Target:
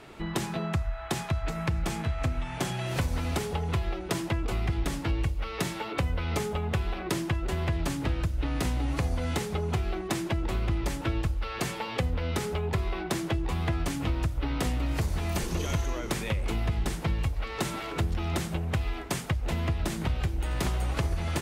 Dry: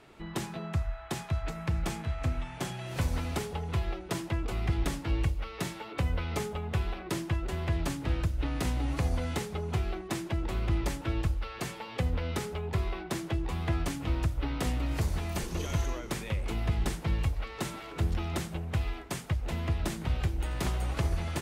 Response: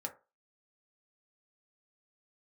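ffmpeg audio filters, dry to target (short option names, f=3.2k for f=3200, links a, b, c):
-af "acompressor=threshold=-34dB:ratio=3,volume=7.5dB"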